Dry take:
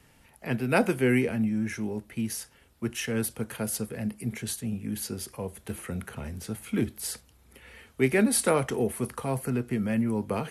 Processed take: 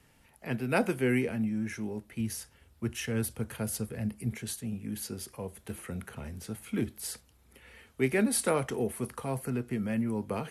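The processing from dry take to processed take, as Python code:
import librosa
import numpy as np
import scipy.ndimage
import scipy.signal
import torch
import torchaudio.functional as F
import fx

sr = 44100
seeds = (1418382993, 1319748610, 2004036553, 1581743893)

y = fx.peak_eq(x, sr, hz=77.0, db=9.5, octaves=1.3, at=(2.2, 4.33))
y = y * 10.0 ** (-4.0 / 20.0)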